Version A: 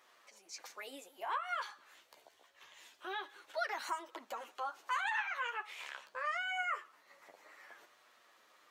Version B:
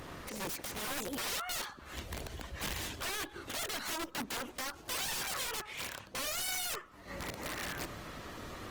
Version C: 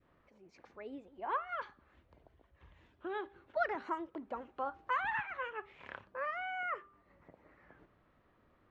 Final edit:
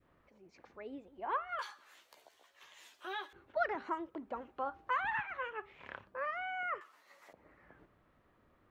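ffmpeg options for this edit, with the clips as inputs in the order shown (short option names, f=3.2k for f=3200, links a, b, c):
-filter_complex "[0:a]asplit=2[a][b];[2:a]asplit=3[c][d][e];[c]atrim=end=1.592[f];[a]atrim=start=1.588:end=3.332[g];[d]atrim=start=3.328:end=6.812[h];[b]atrim=start=6.808:end=7.332[i];[e]atrim=start=7.328[j];[f][g]acrossfade=d=0.004:c1=hsin:c2=hsin[k];[k][h]acrossfade=d=0.004:c1=hsin:c2=hsin[l];[l][i]acrossfade=d=0.004:c1=hsin:c2=hsin[m];[m][j]acrossfade=d=0.004:c1=hsin:c2=hsin"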